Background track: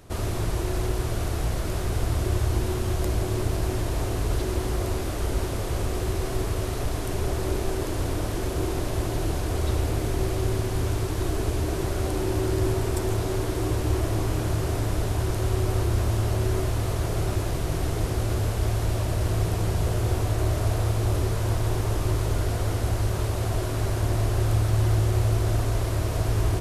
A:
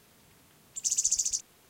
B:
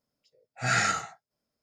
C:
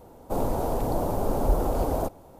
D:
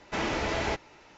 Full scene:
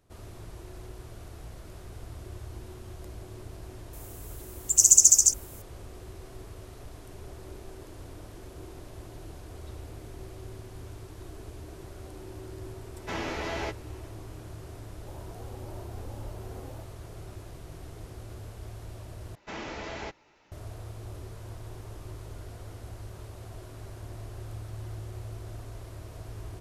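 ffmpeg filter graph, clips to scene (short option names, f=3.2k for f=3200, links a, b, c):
-filter_complex "[4:a]asplit=2[a][b];[0:a]volume=-17.5dB[c];[1:a]aexciter=amount=7.8:drive=4.7:freq=5.9k[d];[a]asplit=2[e][f];[f]adelay=12,volume=-5dB[g];[e][g]amix=inputs=2:normalize=0[h];[3:a]asplit=2[i][j];[j]adelay=2.5,afreqshift=1.8[k];[i][k]amix=inputs=2:normalize=1[l];[c]asplit=2[m][n];[m]atrim=end=19.354[o];[b]atrim=end=1.17,asetpts=PTS-STARTPTS,volume=-8.5dB[p];[n]atrim=start=20.516[q];[d]atrim=end=1.69,asetpts=PTS-STARTPTS,volume=-3.5dB,afade=t=in:d=0.004:c=hsin,afade=t=out:st=1.686:d=0.004:c=hsin,adelay=173313S[r];[h]atrim=end=1.17,asetpts=PTS-STARTPTS,volume=-5.5dB,afade=t=in:d=0.004:c=hsin,afade=t=out:st=1.166:d=0.004:c=hsin,adelay=12950[s];[l]atrim=end=2.39,asetpts=PTS-STARTPTS,volume=-17.5dB,afade=t=in:d=0.004:c=hsin,afade=t=out:st=2.386:d=0.004:c=hsin,adelay=650916S[t];[o][p]acrossfade=d=0.004:c1=hsin:c2=hsin[u];[u][q]acrossfade=d=0.004:c1=hsin:c2=hsin[v];[v][r][s][t]amix=inputs=4:normalize=0"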